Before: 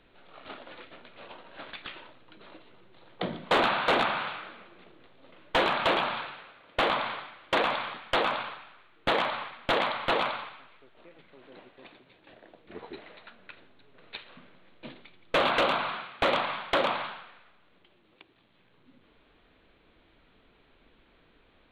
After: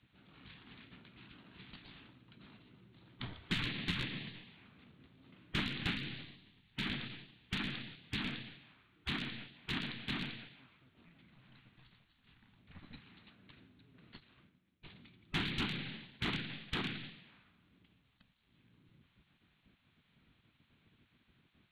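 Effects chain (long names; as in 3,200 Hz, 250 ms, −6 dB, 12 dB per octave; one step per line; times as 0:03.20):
0:14.20–0:14.93: downward expander −46 dBFS
gate on every frequency bin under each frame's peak −10 dB weak
drawn EQ curve 140 Hz 0 dB, 260 Hz −3 dB, 530 Hz −21 dB, 2,500 Hz −12 dB
level +5 dB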